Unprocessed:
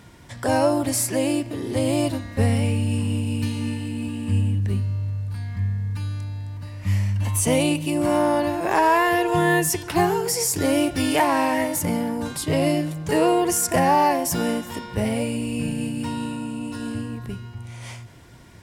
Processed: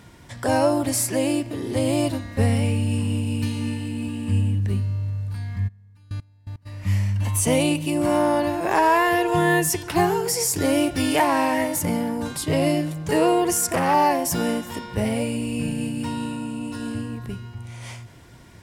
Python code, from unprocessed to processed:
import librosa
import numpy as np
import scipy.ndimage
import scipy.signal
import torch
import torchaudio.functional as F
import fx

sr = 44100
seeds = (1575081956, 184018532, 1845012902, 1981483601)

y = fx.step_gate(x, sr, bpm=167, pattern='..x.....x.', floor_db=-24.0, edge_ms=4.5, at=(5.67, 6.65), fade=0.02)
y = fx.transformer_sat(y, sr, knee_hz=900.0, at=(13.54, 13.94))